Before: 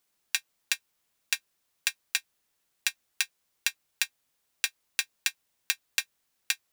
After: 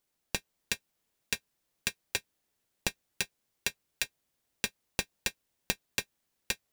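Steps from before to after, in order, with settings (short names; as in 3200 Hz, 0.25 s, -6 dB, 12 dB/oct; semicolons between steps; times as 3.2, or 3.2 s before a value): AGC; in parallel at -10.5 dB: sample-rate reducer 1400 Hz, jitter 0%; on the sum: gain -6 dB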